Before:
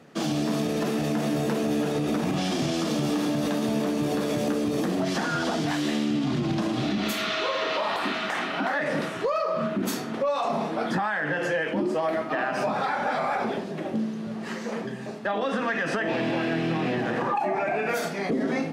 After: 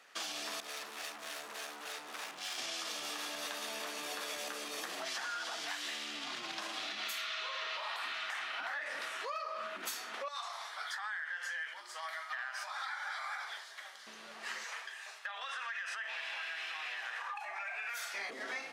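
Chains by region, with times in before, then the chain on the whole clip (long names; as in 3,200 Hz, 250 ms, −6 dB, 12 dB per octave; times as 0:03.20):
0:00.60–0:02.58: two-band tremolo in antiphase 3.4 Hz, crossover 420 Hz + hard clipping −31.5 dBFS
0:10.28–0:14.07: high-pass filter 1,300 Hz + parametric band 2,600 Hz −15 dB 0.2 octaves
0:14.64–0:18.14: high-pass filter 980 Hz + notch filter 4,600 Hz, Q 22 + downward compressor 2.5 to 1, threshold −33 dBFS
whole clip: high-pass filter 1,300 Hz 12 dB per octave; downward compressor, threshold −37 dBFS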